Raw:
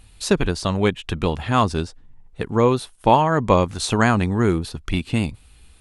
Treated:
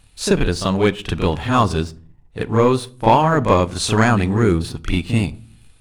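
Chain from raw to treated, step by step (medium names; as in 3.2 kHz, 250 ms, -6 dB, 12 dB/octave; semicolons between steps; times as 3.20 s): waveshaping leveller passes 1; on a send: reverse echo 36 ms -8 dB; on the sum: simulated room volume 520 m³, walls furnished, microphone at 0.31 m; trim -1 dB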